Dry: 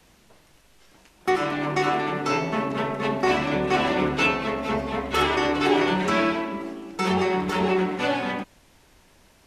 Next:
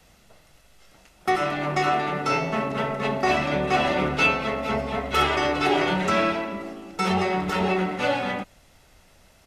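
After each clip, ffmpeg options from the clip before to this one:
-af "aecho=1:1:1.5:0.37"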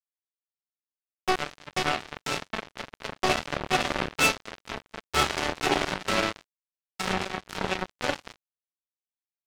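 -af "acrusher=bits=2:mix=0:aa=0.5,volume=-2dB"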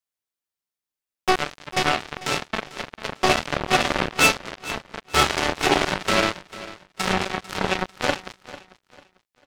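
-af "aecho=1:1:446|892|1338:0.141|0.0438|0.0136,volume=5.5dB"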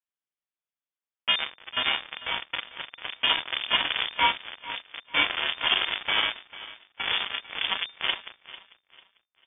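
-af "lowpass=f=3.1k:t=q:w=0.5098,lowpass=f=3.1k:t=q:w=0.6013,lowpass=f=3.1k:t=q:w=0.9,lowpass=f=3.1k:t=q:w=2.563,afreqshift=-3600,volume=-4.5dB"

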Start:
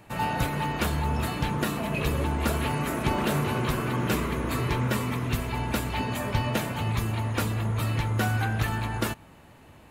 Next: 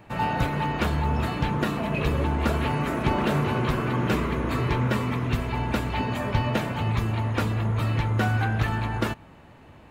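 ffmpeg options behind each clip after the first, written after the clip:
-af "equalizer=f=12k:t=o:w=1.6:g=-13.5,volume=2.5dB"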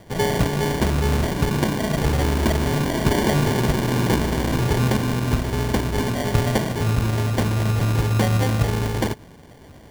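-af "acrusher=samples=34:mix=1:aa=0.000001,volume=4.5dB"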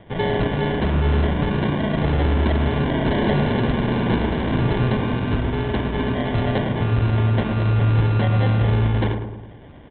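-filter_complex "[0:a]aresample=8000,asoftclip=type=hard:threshold=-16dB,aresample=44100,asplit=2[a][b];[b]adelay=108,lowpass=f=1.3k:p=1,volume=-5.5dB,asplit=2[c][d];[d]adelay=108,lowpass=f=1.3k:p=1,volume=0.55,asplit=2[e][f];[f]adelay=108,lowpass=f=1.3k:p=1,volume=0.55,asplit=2[g][h];[h]adelay=108,lowpass=f=1.3k:p=1,volume=0.55,asplit=2[i][j];[j]adelay=108,lowpass=f=1.3k:p=1,volume=0.55,asplit=2[k][l];[l]adelay=108,lowpass=f=1.3k:p=1,volume=0.55,asplit=2[m][n];[n]adelay=108,lowpass=f=1.3k:p=1,volume=0.55[o];[a][c][e][g][i][k][m][o]amix=inputs=8:normalize=0"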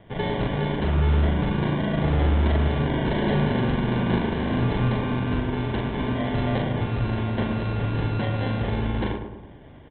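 -filter_complex "[0:a]asplit=2[a][b];[b]adelay=40,volume=-3.5dB[c];[a][c]amix=inputs=2:normalize=0,volume=-5dB"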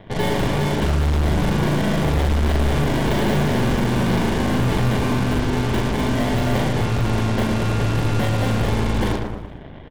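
-filter_complex "[0:a]volume=22.5dB,asoftclip=hard,volume=-22.5dB,aeval=exprs='0.0794*(cos(1*acos(clip(val(0)/0.0794,-1,1)))-cos(1*PI/2))+0.0141*(cos(8*acos(clip(val(0)/0.0794,-1,1)))-cos(8*PI/2))':c=same,asplit=5[a][b][c][d][e];[b]adelay=115,afreqshift=-56,volume=-14.5dB[f];[c]adelay=230,afreqshift=-112,volume=-20.9dB[g];[d]adelay=345,afreqshift=-168,volume=-27.3dB[h];[e]adelay=460,afreqshift=-224,volume=-33.6dB[i];[a][f][g][h][i]amix=inputs=5:normalize=0,volume=6dB"

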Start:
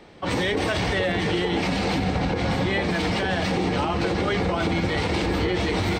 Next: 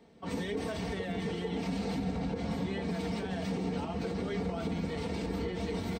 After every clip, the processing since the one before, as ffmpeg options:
-af "highpass=64,equalizer=f=2.1k:w=0.3:g=-9.5,aecho=1:1:4.4:0.6,volume=-8.5dB"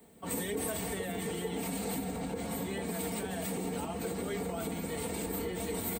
-filter_complex "[0:a]acrossover=split=240|1200|1600[a][b][c][d];[a]alimiter=level_in=15dB:limit=-24dB:level=0:latency=1,volume=-15dB[e];[d]aexciter=amount=13.8:drive=6.2:freq=8k[f];[e][b][c][f]amix=inputs=4:normalize=0"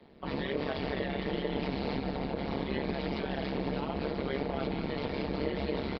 -af "tremolo=f=140:d=0.947,aecho=1:1:222:0.335,aresample=11025,aresample=44100,volume=6.5dB"

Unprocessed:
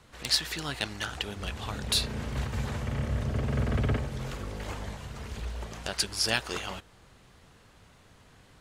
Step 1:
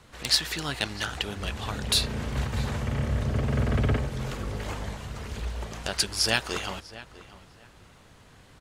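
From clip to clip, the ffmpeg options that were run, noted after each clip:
-filter_complex "[0:a]asplit=2[a][b];[b]adelay=647,lowpass=f=2.7k:p=1,volume=-16.5dB,asplit=2[c][d];[d]adelay=647,lowpass=f=2.7k:p=1,volume=0.24[e];[a][c][e]amix=inputs=3:normalize=0,volume=3dB"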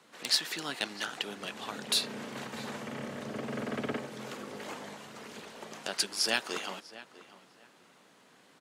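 -af "highpass=f=200:w=0.5412,highpass=f=200:w=1.3066,volume=-4.5dB"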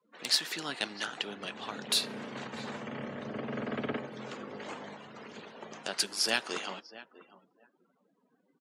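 -af "afftdn=nr=30:nf=-53"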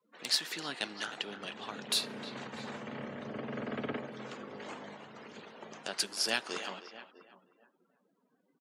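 -filter_complex "[0:a]asplit=2[a][b];[b]adelay=310,highpass=300,lowpass=3.4k,asoftclip=type=hard:threshold=-19.5dB,volume=-12dB[c];[a][c]amix=inputs=2:normalize=0,volume=-2.5dB"

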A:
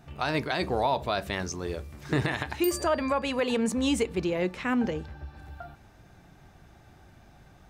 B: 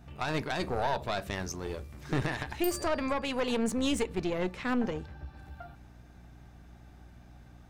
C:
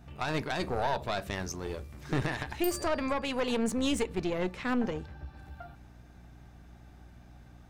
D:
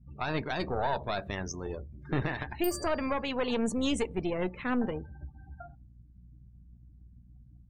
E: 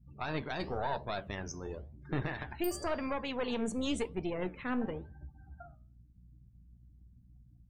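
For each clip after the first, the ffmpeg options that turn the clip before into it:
-af "aeval=exprs='val(0)+0.00355*(sin(2*PI*60*n/s)+sin(2*PI*2*60*n/s)/2+sin(2*PI*3*60*n/s)/3+sin(2*PI*4*60*n/s)/4+sin(2*PI*5*60*n/s)/5)':c=same,aeval=exprs='(tanh(12.6*val(0)+0.65)-tanh(0.65))/12.6':c=same"
-af anull
-af "afftdn=nr=35:nf=-44"
-af "flanger=delay=5.9:depth=9.2:regen=-80:speed=0.95:shape=sinusoidal"

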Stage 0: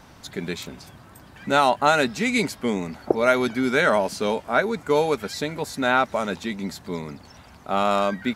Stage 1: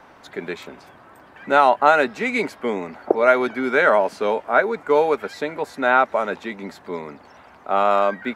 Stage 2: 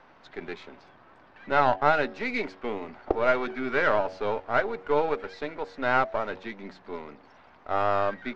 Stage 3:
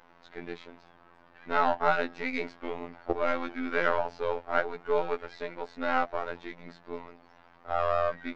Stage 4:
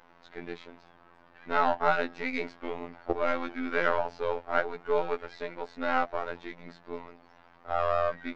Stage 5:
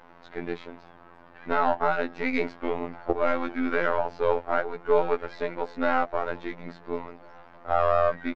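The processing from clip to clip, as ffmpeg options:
-filter_complex "[0:a]acrossover=split=300 2500:gain=0.158 1 0.178[a][b][c];[a][b][c]amix=inputs=3:normalize=0,volume=4.5dB"
-af "aeval=exprs='if(lt(val(0),0),0.447*val(0),val(0))':c=same,lowpass=f=5.3k:w=0.5412,lowpass=f=5.3k:w=1.3066,bandreject=f=93.91:t=h:w=4,bandreject=f=187.82:t=h:w=4,bandreject=f=281.73:t=h:w=4,bandreject=f=375.64:t=h:w=4,bandreject=f=469.55:t=h:w=4,bandreject=f=563.46:t=h:w=4,bandreject=f=657.37:t=h:w=4,bandreject=f=751.28:t=h:w=4,bandreject=f=845.19:t=h:w=4,volume=-5dB"
-af "afftfilt=real='hypot(re,im)*cos(PI*b)':imag='0':win_size=2048:overlap=0.75"
-af anull
-filter_complex "[0:a]alimiter=limit=-14.5dB:level=0:latency=1:release=429,highshelf=f=2.5k:g=-8,asplit=2[a][b];[b]adelay=1399,volume=-26dB,highshelf=f=4k:g=-31.5[c];[a][c]amix=inputs=2:normalize=0,volume=7.5dB"

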